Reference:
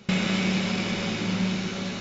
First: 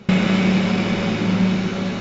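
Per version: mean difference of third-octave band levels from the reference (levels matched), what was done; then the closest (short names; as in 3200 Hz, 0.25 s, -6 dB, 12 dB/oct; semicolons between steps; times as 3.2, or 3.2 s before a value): 2.5 dB: high shelf 2900 Hz -11.5 dB; gain +8.5 dB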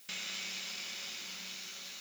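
12.5 dB: differentiator; added noise blue -56 dBFS; gain -2 dB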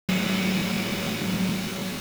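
5.0 dB: requantised 6-bit, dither none; crackling interface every 0.15 s, samples 1024, repeat, from 0.57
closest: first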